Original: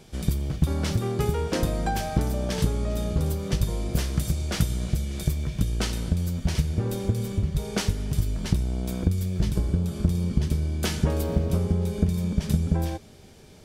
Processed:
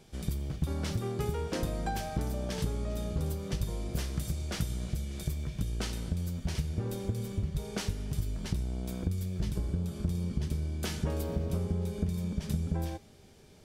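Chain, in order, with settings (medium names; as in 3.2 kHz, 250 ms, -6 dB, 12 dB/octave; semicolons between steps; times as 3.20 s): in parallel at -0.5 dB: peak limiter -15.5 dBFS, peak gain reduction 7.5 dB; on the sum: feedback comb 400 Hz, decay 0.65 s, mix 50%; trim -7 dB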